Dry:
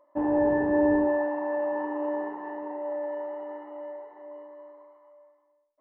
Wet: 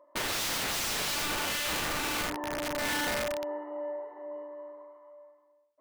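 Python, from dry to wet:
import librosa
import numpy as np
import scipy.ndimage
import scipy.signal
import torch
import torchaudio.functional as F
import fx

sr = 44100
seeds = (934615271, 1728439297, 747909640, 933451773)

y = fx.highpass(x, sr, hz=220.0, slope=6)
y = fx.high_shelf(y, sr, hz=2100.0, db=-7.0)
y = fx.notch(y, sr, hz=820.0, q=12.0)
y = (np.mod(10.0 ** (31.0 / 20.0) * y + 1.0, 2.0) - 1.0) / 10.0 ** (31.0 / 20.0)
y = y * 10.0 ** (4.0 / 20.0)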